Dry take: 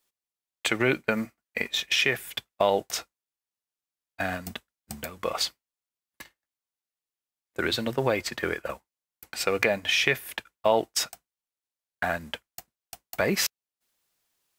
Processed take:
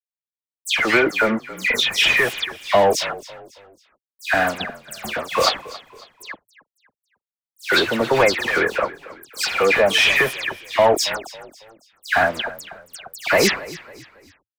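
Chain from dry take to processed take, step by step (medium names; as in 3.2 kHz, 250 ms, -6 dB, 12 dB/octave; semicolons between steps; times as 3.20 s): small samples zeroed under -40 dBFS; overdrive pedal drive 24 dB, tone 2.6 kHz, clips at -4.5 dBFS; phase dispersion lows, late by 139 ms, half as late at 2.8 kHz; on a send: frequency-shifting echo 275 ms, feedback 39%, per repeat -36 Hz, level -18 dB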